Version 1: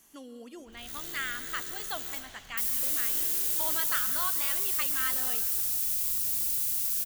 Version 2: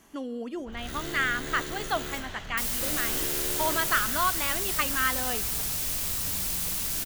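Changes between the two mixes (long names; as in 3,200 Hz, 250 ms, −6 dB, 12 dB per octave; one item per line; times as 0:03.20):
speech: send −10.5 dB
second sound: send +8.0 dB
master: remove first-order pre-emphasis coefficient 0.8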